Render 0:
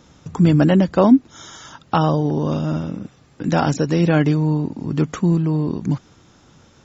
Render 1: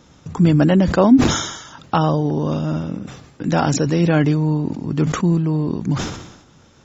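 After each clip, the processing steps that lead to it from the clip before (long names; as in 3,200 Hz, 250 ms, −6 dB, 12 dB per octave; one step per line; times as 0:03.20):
level that may fall only so fast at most 64 dB per second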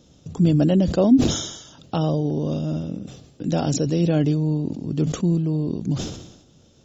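flat-topped bell 1,400 Hz −11 dB
level −3.5 dB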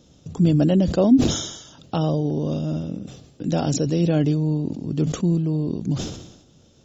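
no processing that can be heard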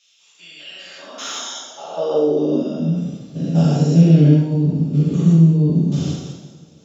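spectrum averaged block by block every 200 ms
coupled-rooms reverb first 0.73 s, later 2.4 s, DRR −8 dB
high-pass filter sweep 2,500 Hz → 140 Hz, 0:00.73–0:03.16
level −4.5 dB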